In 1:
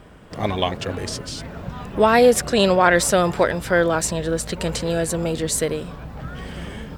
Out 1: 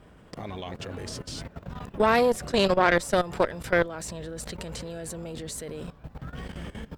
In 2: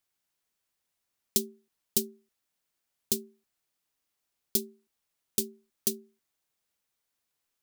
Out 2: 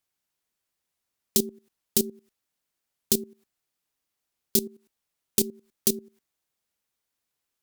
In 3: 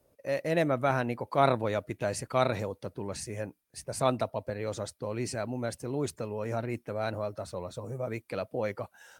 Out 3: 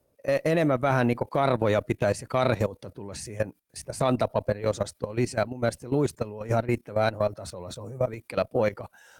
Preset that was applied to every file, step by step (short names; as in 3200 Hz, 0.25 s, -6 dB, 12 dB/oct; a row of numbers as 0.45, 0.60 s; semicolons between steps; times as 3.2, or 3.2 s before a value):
low shelf 470 Hz +2 dB; level quantiser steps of 16 dB; tube stage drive 10 dB, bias 0.75; match loudness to -27 LUFS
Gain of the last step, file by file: 0.0, +17.5, +14.5 dB